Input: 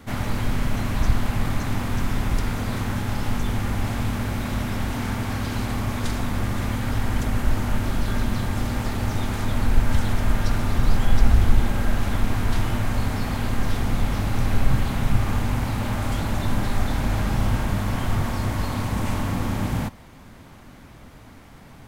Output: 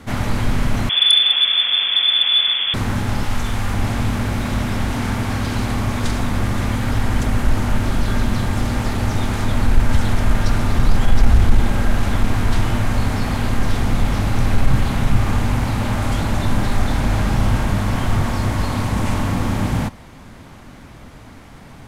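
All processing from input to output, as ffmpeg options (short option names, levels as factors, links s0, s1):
-filter_complex "[0:a]asettb=1/sr,asplit=3[s0][s1][s2];[s0]atrim=end=0.894[s3];[s1]atrim=start=0.89:end=2.74,asetpts=PTS-STARTPTS,afade=t=in:d=0.004:c=qsin,afade=t=out:st=1.846:d=0.004:c=qsin,lowpass=f=3000:t=q:w=0.5098,lowpass=f=3000:t=q:w=0.6013,lowpass=f=3000:t=q:w=0.9,lowpass=f=3000:t=q:w=2.563,afreqshift=-3500,aeval=exprs='0.355*(abs(mod(val(0)/0.355+3,4)-2)-1)':c=same[s4];[s2]atrim=start=2.736[s5];[s3][s4]acrossfade=d=0.004:c1=hsin:c2=qsin[s6];[s6][s5]acrossfade=d=0.004:c1=qsin:c2=hsin,asettb=1/sr,asplit=3[s7][s8][s9];[s7]atrim=end=3.254[s10];[s8]atrim=start=3.25:end=3.74,asetpts=PTS-STARTPTS,afade=t=in:d=0.004:c=qsin,afade=t=out:st=0.486:d=0.004:c=qsin,equalizer=f=210:w=0.45:g=-8,asplit=2[s11][s12];[s12]adelay=50,volume=0.562[s13];[s11][s13]amix=inputs=2:normalize=0,atrim=end_sample=21609[s14];[s9]atrim=start=3.736[s15];[s10][s14]acrossfade=d=0.004:c1=hsin:c2=qsin[s16];[s16][s15]acrossfade=d=0.004:c1=qsin:c2=hsin,acontrast=33,lowpass=12000"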